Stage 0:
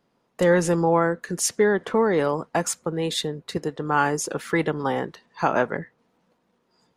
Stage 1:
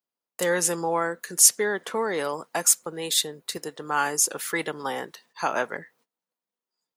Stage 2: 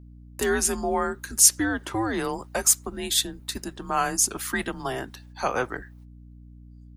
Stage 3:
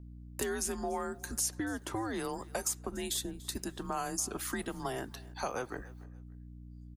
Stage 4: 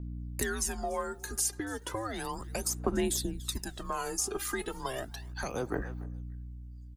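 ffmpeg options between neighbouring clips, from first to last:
-af "agate=range=0.0891:threshold=0.00158:ratio=16:detection=peak,aemphasis=mode=production:type=riaa,volume=0.668"
-af "afreqshift=-120,aeval=exprs='val(0)+0.00562*(sin(2*PI*60*n/s)+sin(2*PI*2*60*n/s)/2+sin(2*PI*3*60*n/s)/3+sin(2*PI*4*60*n/s)/4+sin(2*PI*5*60*n/s)/5)':c=same"
-filter_complex "[0:a]acrossover=split=1000|5000[s0][s1][s2];[s0]acompressor=threshold=0.0224:ratio=4[s3];[s1]acompressor=threshold=0.00708:ratio=4[s4];[s2]acompressor=threshold=0.02:ratio=4[s5];[s3][s4][s5]amix=inputs=3:normalize=0,aecho=1:1:290|580:0.0891|0.0241,volume=0.794"
-af "aphaser=in_gain=1:out_gain=1:delay=2.5:decay=0.67:speed=0.34:type=sinusoidal"

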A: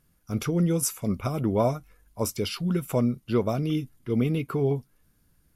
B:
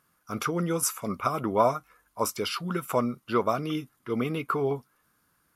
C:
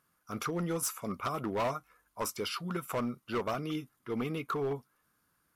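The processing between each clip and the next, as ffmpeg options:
-af "highpass=f=350:p=1,equalizer=f=1200:w=1.5:g=11.5"
-af "volume=13.3,asoftclip=hard,volume=0.075,volume=0.562"

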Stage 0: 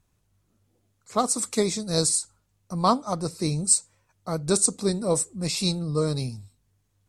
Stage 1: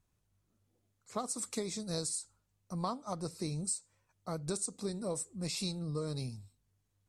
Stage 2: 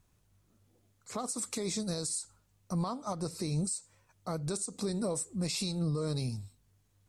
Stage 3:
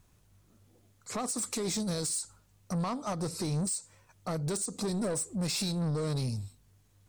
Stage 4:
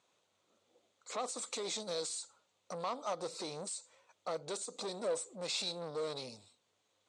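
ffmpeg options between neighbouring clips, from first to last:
-af "acompressor=threshold=0.0562:ratio=6,volume=0.398"
-af "alimiter=level_in=2.82:limit=0.0631:level=0:latency=1:release=135,volume=0.355,volume=2.51"
-af "asoftclip=type=tanh:threshold=0.0224,volume=1.88"
-af "highpass=500,equalizer=f=520:t=q:w=4:g=6,equalizer=f=1700:t=q:w=4:g=-5,equalizer=f=3600:t=q:w=4:g=5,equalizer=f=5300:t=q:w=4:g=-6,lowpass=f=7200:w=0.5412,lowpass=f=7200:w=1.3066,volume=0.794"

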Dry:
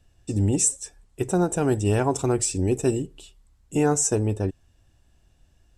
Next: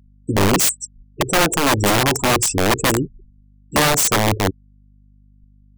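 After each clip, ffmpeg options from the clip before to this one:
-af "afftfilt=real='re*gte(hypot(re,im),0.0316)':imag='im*gte(hypot(re,im),0.0316)':win_size=1024:overlap=0.75,aeval=exprs='val(0)+0.00141*(sin(2*PI*50*n/s)+sin(2*PI*2*50*n/s)/2+sin(2*PI*3*50*n/s)/3+sin(2*PI*4*50*n/s)/4+sin(2*PI*5*50*n/s)/5)':c=same,aeval=exprs='(mod(7.5*val(0)+1,2)-1)/7.5':c=same,volume=2.37"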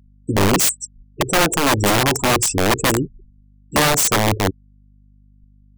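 -af anull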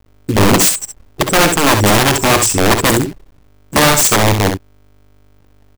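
-filter_complex "[0:a]acrusher=bits=6:dc=4:mix=0:aa=0.000001,asplit=2[s0][s1];[s1]aecho=0:1:57|67:0.188|0.422[s2];[s0][s2]amix=inputs=2:normalize=0,volume=1.68"

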